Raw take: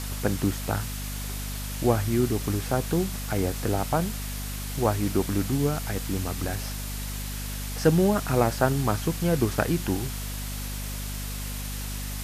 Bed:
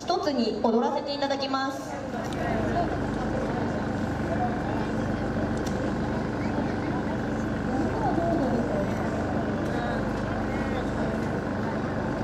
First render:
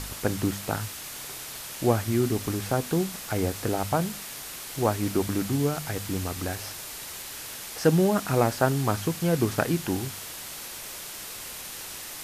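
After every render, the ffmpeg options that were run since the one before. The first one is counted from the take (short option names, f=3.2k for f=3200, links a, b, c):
-af "bandreject=f=50:t=h:w=4,bandreject=f=100:t=h:w=4,bandreject=f=150:t=h:w=4,bandreject=f=200:t=h:w=4,bandreject=f=250:t=h:w=4"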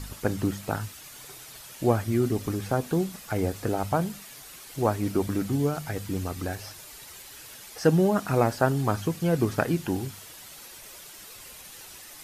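-af "afftdn=nr=9:nf=-39"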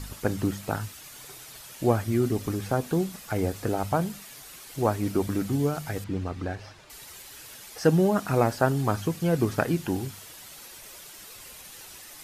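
-filter_complex "[0:a]asettb=1/sr,asplit=3[a][b][c];[a]atrim=end=6.044[d];[b]atrim=start=6.04:end=6.9,asetpts=PTS-STARTPTS,afade=t=in:d=0.004:c=qsin,afade=t=out:st=0.856:d=0.004:c=qsin,adynamicsmooth=sensitivity=2.5:basefreq=3.5k[e];[c]atrim=start=6.896[f];[d][e]acrossfade=d=0.004:c1=hsin:c2=qsin[g];[g][f]acrossfade=d=0.004:c1=qsin:c2=hsin"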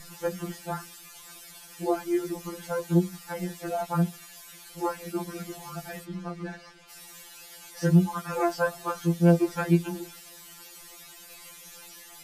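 -af "afftfilt=real='re*2.83*eq(mod(b,8),0)':imag='im*2.83*eq(mod(b,8),0)':win_size=2048:overlap=0.75"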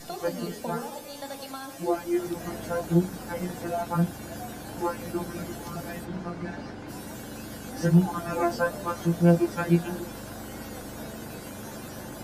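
-filter_complex "[1:a]volume=-11.5dB[a];[0:a][a]amix=inputs=2:normalize=0"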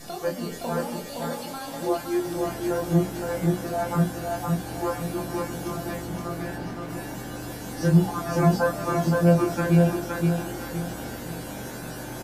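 -filter_complex "[0:a]asplit=2[a][b];[b]adelay=25,volume=-4dB[c];[a][c]amix=inputs=2:normalize=0,aecho=1:1:517|1034|1551|2068|2585:0.708|0.262|0.0969|0.0359|0.0133"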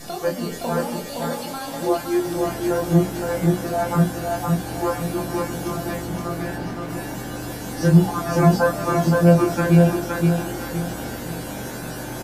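-af "volume=4.5dB"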